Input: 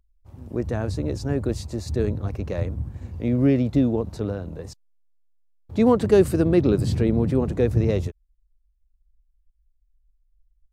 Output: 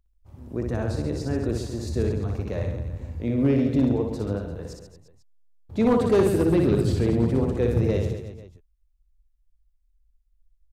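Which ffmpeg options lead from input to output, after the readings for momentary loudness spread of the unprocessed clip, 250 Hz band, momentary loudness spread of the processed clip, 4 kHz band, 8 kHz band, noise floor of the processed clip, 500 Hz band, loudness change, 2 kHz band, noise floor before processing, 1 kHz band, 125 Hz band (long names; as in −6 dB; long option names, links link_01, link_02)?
14 LU, −1.5 dB, 13 LU, −1.0 dB, −1.0 dB, −66 dBFS, −1.5 dB, −1.5 dB, −0.5 dB, −67 dBFS, −0.5 dB, −1.0 dB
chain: -af "aecho=1:1:60|135|228.8|345.9|492.4:0.631|0.398|0.251|0.158|0.1,volume=10.5dB,asoftclip=hard,volume=-10.5dB,volume=-3dB"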